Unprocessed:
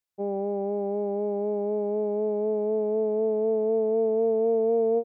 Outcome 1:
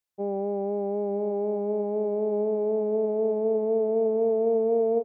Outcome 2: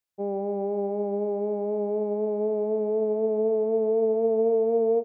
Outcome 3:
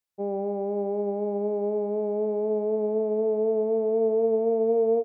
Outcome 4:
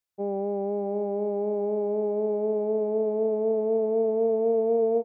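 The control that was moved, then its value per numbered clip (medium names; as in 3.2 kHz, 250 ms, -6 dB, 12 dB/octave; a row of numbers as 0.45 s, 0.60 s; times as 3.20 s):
feedback delay, time: 911 ms, 148 ms, 98 ms, 618 ms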